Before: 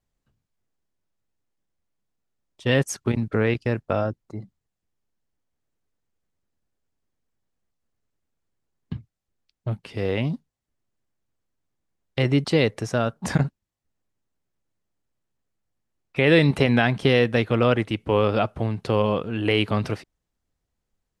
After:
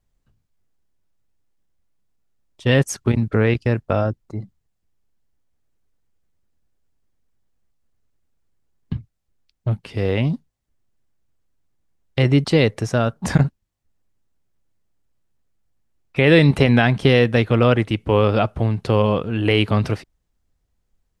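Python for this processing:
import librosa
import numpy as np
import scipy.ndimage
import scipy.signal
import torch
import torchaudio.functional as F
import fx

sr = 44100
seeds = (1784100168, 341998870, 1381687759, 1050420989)

y = fx.low_shelf(x, sr, hz=93.0, db=9.0)
y = y * librosa.db_to_amplitude(3.0)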